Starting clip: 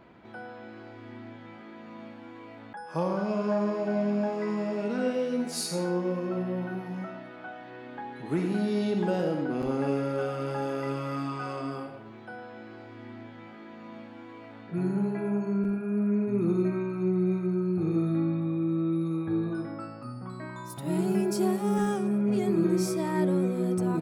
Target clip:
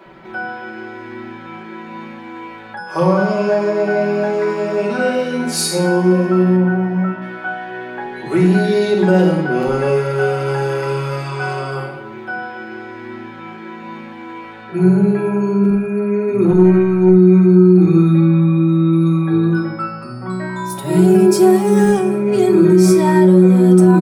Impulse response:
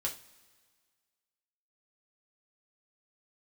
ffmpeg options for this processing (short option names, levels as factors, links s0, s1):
-filter_complex "[0:a]asettb=1/sr,asplit=3[s0][s1][s2];[s0]atrim=end=6.564[s3];[s1]atrim=start=6.56:end=7.22,asetpts=PTS-STARTPTS,afade=t=in:d=0.004:c=qsin,afade=t=out:st=0.656:d=0.004:c=qsin,lowpass=f=1600:p=1[s4];[s2]atrim=start=7.216[s5];[s3][s4]acrossfade=d=0.004:c1=hsin:c2=qsin[s6];[s6][s5]acrossfade=d=0.004:c1=qsin:c2=hsin,aecho=1:1:5.3:0.86,asettb=1/sr,asplit=3[s7][s8][s9];[s7]atrim=end=16.454[s10];[s8]atrim=start=16.45:end=17.09,asetpts=PTS-STARTPTS,afade=t=in:d=0.004:c=qsin,afade=t=out:st=0.636:d=0.004:c=qsin,aeval=exprs='(tanh(7.08*val(0)+0.25)-tanh(0.25))/7.08':c=same[s11];[s9]atrim=start=17.086[s12];[s10][s11]acrossfade=d=0.004:c1=hsin:c2=qsin[s13];[s13][s12]acrossfade=d=0.004:c1=qsin:c2=hsin,acrossover=split=230[s14][s15];[s14]adelay=60[s16];[s16][s15]amix=inputs=2:normalize=0,asplit=2[s17][s18];[1:a]atrim=start_sample=2205[s19];[s18][s19]afir=irnorm=-1:irlink=0,volume=0.891[s20];[s17][s20]amix=inputs=2:normalize=0,alimiter=level_in=2.24:limit=0.891:release=50:level=0:latency=1,volume=0.891"